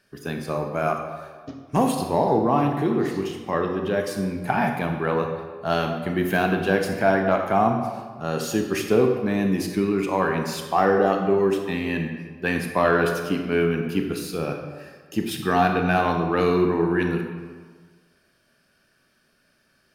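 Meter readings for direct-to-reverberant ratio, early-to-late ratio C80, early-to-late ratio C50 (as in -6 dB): 3.5 dB, 7.0 dB, 5.0 dB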